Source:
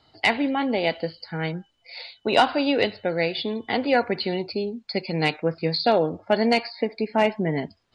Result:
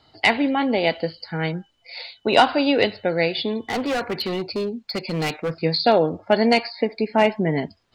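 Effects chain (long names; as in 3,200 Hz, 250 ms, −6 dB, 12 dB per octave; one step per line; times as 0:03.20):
0:03.59–0:05.60: hard clipping −23.5 dBFS, distortion −13 dB
level +3 dB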